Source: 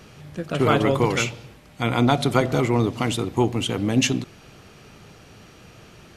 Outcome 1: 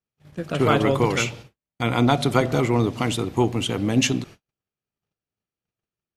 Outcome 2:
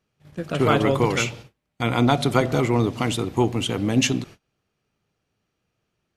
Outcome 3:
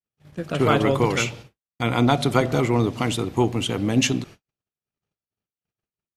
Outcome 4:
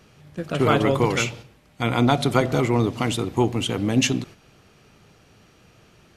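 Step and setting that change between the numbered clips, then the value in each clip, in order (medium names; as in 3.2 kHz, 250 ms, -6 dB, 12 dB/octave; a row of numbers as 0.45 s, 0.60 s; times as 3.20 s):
gate, range: -46 dB, -29 dB, -59 dB, -7 dB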